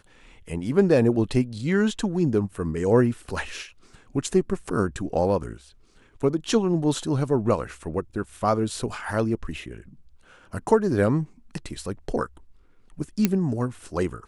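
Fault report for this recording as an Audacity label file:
13.250000	13.250000	click −6 dBFS

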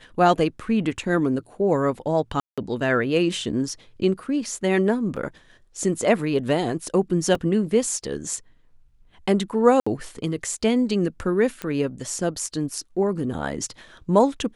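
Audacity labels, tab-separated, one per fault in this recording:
2.400000	2.580000	drop-out 176 ms
5.160000	5.170000	drop-out 6 ms
7.350000	7.350000	drop-out 2.2 ms
9.800000	9.870000	drop-out 65 ms
11.620000	11.620000	click −15 dBFS

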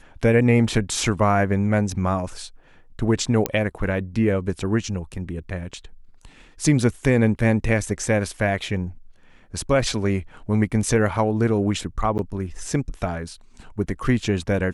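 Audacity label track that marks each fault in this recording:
3.460000	3.460000	click −5 dBFS
12.180000	12.190000	drop-out 9.9 ms

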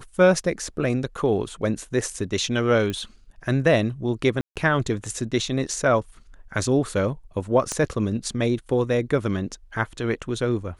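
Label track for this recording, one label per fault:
2.900000	2.900000	click −16 dBFS
4.410000	4.560000	drop-out 147 ms
7.720000	7.720000	click −13 dBFS

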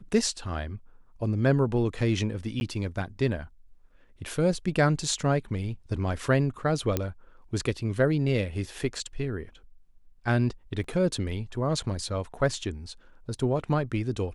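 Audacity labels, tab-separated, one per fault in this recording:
2.600000	2.610000	drop-out 11 ms
6.970000	6.970000	click −11 dBFS
10.840000	10.840000	drop-out 3.4 ms

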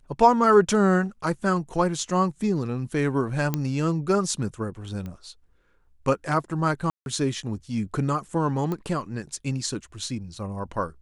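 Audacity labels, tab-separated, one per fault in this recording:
3.540000	3.540000	click −11 dBFS
5.060000	5.060000	click −24 dBFS
6.900000	7.060000	drop-out 161 ms
8.720000	8.720000	click −18 dBFS

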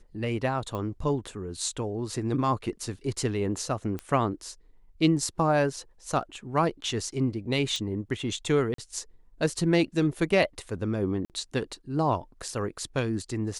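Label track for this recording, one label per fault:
0.750000	0.750000	click −22 dBFS
3.990000	3.990000	click −21 dBFS
7.760000	7.760000	click
8.740000	8.780000	drop-out 43 ms
11.250000	11.300000	drop-out 48 ms

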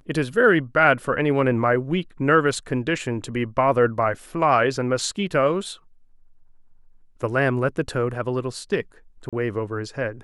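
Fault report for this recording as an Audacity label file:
9.290000	9.330000	drop-out 36 ms

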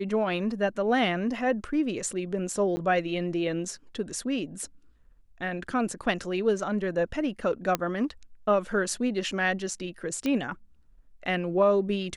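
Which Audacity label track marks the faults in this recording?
2.760000	2.770000	drop-out 10 ms
7.750000	7.750000	click −10 dBFS
10.260000	10.260000	click −16 dBFS

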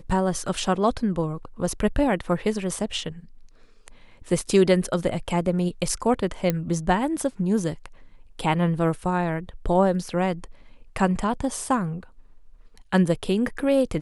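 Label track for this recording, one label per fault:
6.500000	6.500000	click −9 dBFS

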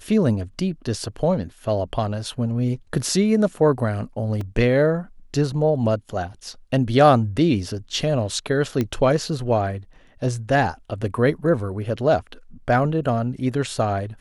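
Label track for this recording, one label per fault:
4.410000	4.410000	drop-out 3 ms
8.810000	8.810000	click −11 dBFS

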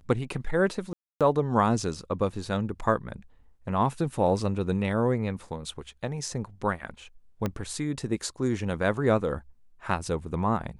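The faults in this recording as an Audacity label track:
0.930000	1.210000	drop-out 277 ms
7.460000	7.460000	click −15 dBFS

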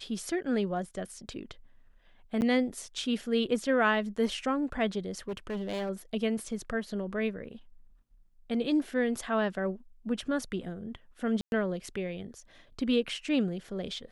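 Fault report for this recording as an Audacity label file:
2.410000	2.420000	drop-out 9.5 ms
5.280000	5.900000	clipping −30.5 dBFS
11.410000	11.520000	drop-out 111 ms

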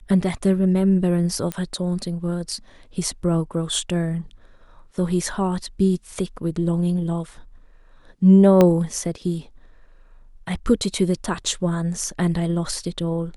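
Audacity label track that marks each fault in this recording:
1.520000	1.520000	click −12 dBFS
8.610000	8.610000	click −4 dBFS

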